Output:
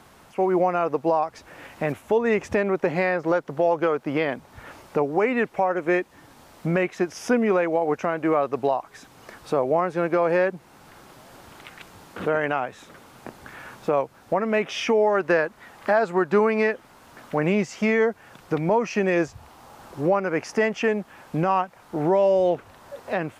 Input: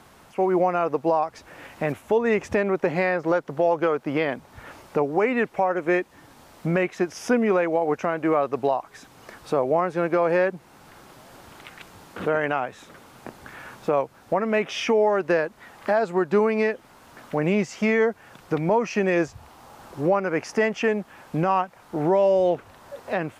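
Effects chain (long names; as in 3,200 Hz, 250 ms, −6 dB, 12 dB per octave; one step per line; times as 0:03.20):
0:15.14–0:17.52: dynamic equaliser 1,400 Hz, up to +4 dB, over −37 dBFS, Q 0.94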